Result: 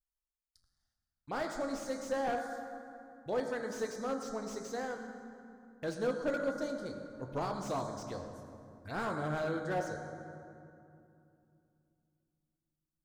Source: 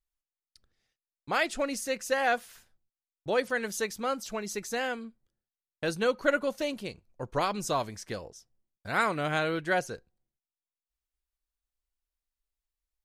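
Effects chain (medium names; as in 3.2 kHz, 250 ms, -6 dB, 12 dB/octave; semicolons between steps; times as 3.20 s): touch-sensitive phaser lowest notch 410 Hz, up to 2.7 kHz, full sweep at -33 dBFS; on a send at -3.5 dB: reverberation RT60 2.7 s, pre-delay 5 ms; on the sum: slew-rate limiter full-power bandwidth 50 Hz; trim -6 dB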